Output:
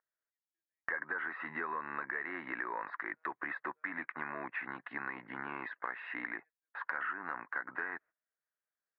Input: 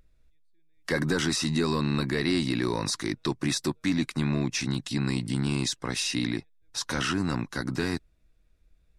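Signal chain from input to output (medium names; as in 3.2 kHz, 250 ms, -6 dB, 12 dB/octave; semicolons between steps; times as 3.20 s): high-pass 1.2 kHz 12 dB/octave; gate -56 dBFS, range -17 dB; elliptic low-pass 1.8 kHz, stop band 70 dB; compression 5:1, threshold -44 dBFS, peak gain reduction 13.5 dB; trim +9 dB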